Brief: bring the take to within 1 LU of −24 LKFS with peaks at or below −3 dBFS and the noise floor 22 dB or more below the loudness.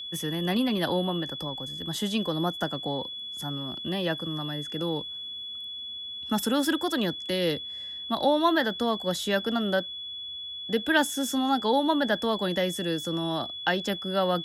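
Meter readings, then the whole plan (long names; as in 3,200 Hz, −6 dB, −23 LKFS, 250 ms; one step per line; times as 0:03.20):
interfering tone 3,400 Hz; level of the tone −35 dBFS; integrated loudness −28.0 LKFS; sample peak −10.0 dBFS; target loudness −24.0 LKFS
→ notch filter 3,400 Hz, Q 30
level +4 dB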